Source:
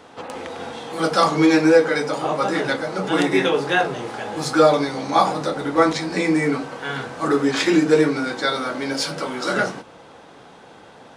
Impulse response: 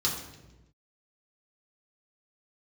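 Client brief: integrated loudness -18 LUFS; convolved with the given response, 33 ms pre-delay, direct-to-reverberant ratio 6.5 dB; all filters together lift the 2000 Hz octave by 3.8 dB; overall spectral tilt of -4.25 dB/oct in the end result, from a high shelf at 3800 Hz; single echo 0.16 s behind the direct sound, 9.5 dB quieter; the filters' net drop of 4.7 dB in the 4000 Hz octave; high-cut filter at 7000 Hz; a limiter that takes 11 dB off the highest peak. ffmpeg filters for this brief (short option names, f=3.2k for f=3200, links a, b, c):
-filter_complex "[0:a]lowpass=7k,equalizer=f=2k:t=o:g=7,highshelf=f=3.8k:g=-4,equalizer=f=4k:t=o:g=-5,alimiter=limit=-13.5dB:level=0:latency=1,aecho=1:1:160:0.335,asplit=2[a][b];[1:a]atrim=start_sample=2205,adelay=33[c];[b][c]afir=irnorm=-1:irlink=0,volume=-14dB[d];[a][d]amix=inputs=2:normalize=0,volume=4dB"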